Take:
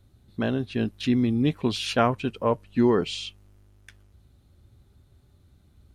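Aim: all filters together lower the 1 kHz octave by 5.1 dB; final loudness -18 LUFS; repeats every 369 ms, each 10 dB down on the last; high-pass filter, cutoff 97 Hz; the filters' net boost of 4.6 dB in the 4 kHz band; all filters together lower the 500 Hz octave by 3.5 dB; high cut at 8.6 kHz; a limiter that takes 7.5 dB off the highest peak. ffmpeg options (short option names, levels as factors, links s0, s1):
-af "highpass=97,lowpass=8600,equalizer=f=500:t=o:g=-3.5,equalizer=f=1000:t=o:g=-6,equalizer=f=4000:t=o:g=6.5,alimiter=limit=0.141:level=0:latency=1,aecho=1:1:369|738|1107|1476:0.316|0.101|0.0324|0.0104,volume=3.16"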